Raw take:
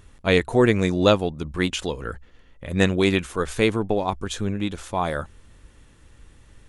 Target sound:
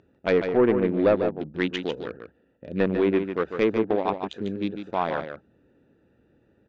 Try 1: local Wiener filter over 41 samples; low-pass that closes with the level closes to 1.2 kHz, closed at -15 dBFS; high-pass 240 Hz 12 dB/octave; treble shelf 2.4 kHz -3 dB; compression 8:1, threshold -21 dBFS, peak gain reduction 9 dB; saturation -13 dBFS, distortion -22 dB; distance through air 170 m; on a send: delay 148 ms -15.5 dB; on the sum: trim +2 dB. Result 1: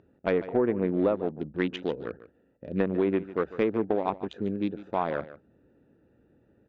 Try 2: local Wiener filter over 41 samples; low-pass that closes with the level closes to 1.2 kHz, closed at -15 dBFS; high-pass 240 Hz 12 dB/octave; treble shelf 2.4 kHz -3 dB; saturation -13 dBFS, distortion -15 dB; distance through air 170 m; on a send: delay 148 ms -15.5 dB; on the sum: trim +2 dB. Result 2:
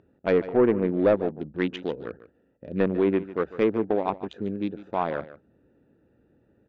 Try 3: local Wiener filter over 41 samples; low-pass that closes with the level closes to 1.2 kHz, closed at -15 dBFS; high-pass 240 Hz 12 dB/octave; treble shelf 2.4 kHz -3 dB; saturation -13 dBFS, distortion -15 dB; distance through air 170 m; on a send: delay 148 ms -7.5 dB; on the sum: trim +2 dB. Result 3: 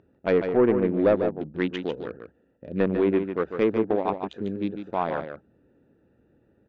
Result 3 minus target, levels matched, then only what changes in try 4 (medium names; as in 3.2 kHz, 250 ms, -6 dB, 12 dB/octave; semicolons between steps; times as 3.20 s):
4 kHz band -5.5 dB
change: treble shelf 2.4 kHz +6.5 dB